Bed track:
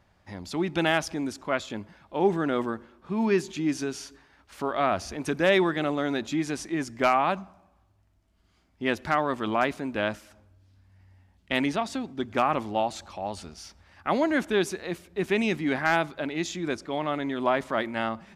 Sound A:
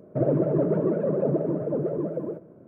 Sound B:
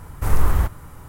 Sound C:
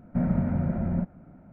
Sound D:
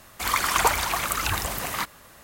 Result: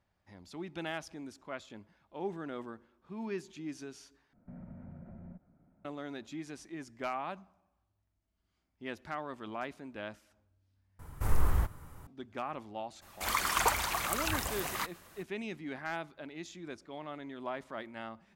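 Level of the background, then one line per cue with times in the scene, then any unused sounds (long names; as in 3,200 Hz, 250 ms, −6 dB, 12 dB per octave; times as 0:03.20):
bed track −14.5 dB
0:04.33: overwrite with C −16.5 dB + downward compressor 2.5 to 1, threshold −31 dBFS
0:10.99: overwrite with B −10 dB
0:13.01: mix in D −7.5 dB, fades 0.02 s
not used: A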